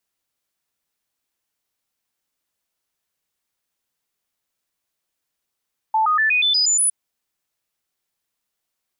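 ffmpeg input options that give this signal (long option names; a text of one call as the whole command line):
ffmpeg -f lavfi -i "aevalsrc='0.188*clip(min(mod(t,0.12),0.12-mod(t,0.12))/0.005,0,1)*sin(2*PI*878*pow(2,floor(t/0.12)/2)*mod(t,0.12))':duration=0.96:sample_rate=44100" out.wav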